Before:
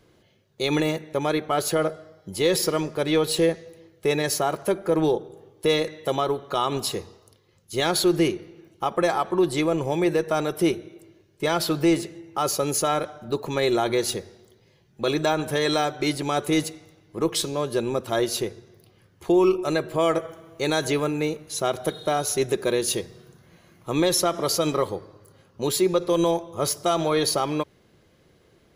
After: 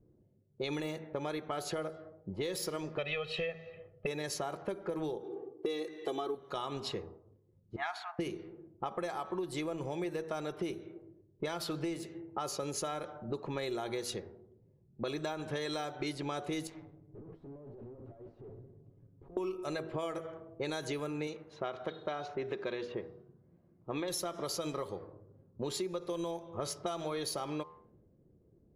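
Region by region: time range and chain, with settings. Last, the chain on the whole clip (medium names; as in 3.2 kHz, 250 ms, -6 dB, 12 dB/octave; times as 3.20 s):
2.98–4.07 s: resonant low-pass 2.7 kHz, resonance Q 4.8 + comb 1.6 ms, depth 88%
5.23–6.35 s: high-pass 210 Hz 24 dB/octave + bass shelf 290 Hz +12 dB + comb 2.6 ms, depth 91%
7.76–8.19 s: brick-wall FIR high-pass 640 Hz + resonant high shelf 2.7 kHz -7 dB, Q 1.5
16.67–19.37 s: comb 7.2 ms, depth 69% + compressor with a negative ratio -28 dBFS, ratio -0.5 + valve stage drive 41 dB, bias 0.75
21.27–24.08 s: tilt EQ +2 dB/octave + low-pass that closes with the level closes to 1.8 kHz, closed at -18.5 dBFS
whole clip: de-hum 80.83 Hz, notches 17; level-controlled noise filter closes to 320 Hz, open at -19.5 dBFS; compression 10:1, threshold -30 dBFS; trim -3.5 dB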